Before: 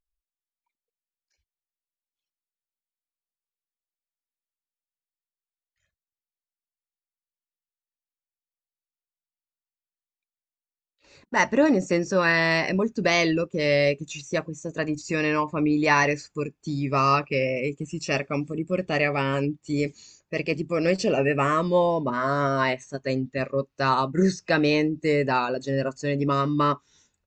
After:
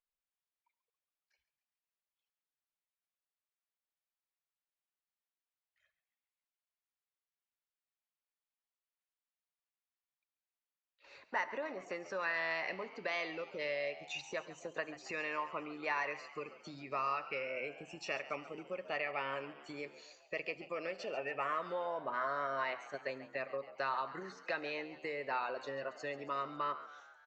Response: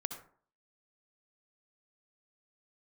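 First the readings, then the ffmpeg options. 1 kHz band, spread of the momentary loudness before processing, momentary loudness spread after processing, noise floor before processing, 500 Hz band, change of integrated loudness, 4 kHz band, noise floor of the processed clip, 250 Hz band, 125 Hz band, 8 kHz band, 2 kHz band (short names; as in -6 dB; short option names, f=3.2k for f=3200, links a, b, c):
-13.0 dB, 9 LU, 8 LU, under -85 dBFS, -16.0 dB, -15.5 dB, -15.0 dB, under -85 dBFS, -25.0 dB, -29.5 dB, -19.5 dB, -12.5 dB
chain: -filter_complex "[0:a]acompressor=threshold=-32dB:ratio=10,acrossover=split=500 3900:gain=0.1 1 0.112[a][b][c];[a][b][c]amix=inputs=3:normalize=0,asplit=7[d][e][f][g][h][i][j];[e]adelay=138,afreqshift=78,volume=-15.5dB[k];[f]adelay=276,afreqshift=156,volume=-19.9dB[l];[g]adelay=414,afreqshift=234,volume=-24.4dB[m];[h]adelay=552,afreqshift=312,volume=-28.8dB[n];[i]adelay=690,afreqshift=390,volume=-33.2dB[o];[j]adelay=828,afreqshift=468,volume=-37.7dB[p];[d][k][l][m][n][o][p]amix=inputs=7:normalize=0,asplit=2[q][r];[1:a]atrim=start_sample=2205[s];[r][s]afir=irnorm=-1:irlink=0,volume=-10dB[t];[q][t]amix=inputs=2:normalize=0,volume=-1.5dB"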